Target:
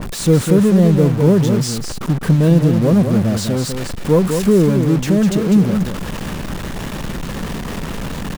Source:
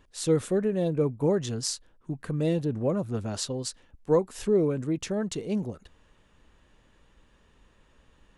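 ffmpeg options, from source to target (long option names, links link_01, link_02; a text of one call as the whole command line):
ffmpeg -i in.wav -filter_complex "[0:a]aeval=exprs='val(0)+0.5*0.0473*sgn(val(0))':channel_layout=same,equalizer=frequency=180:width=1.4:gain=10.5,acrusher=bits=5:mix=0:aa=0.5,asplit=2[link_01][link_02];[link_02]aecho=0:1:201:0.473[link_03];[link_01][link_03]amix=inputs=2:normalize=0,adynamicequalizer=threshold=0.00891:dfrequency=1900:dqfactor=0.7:tfrequency=1900:tqfactor=0.7:attack=5:release=100:ratio=0.375:range=2:mode=cutabove:tftype=highshelf,volume=5dB" out.wav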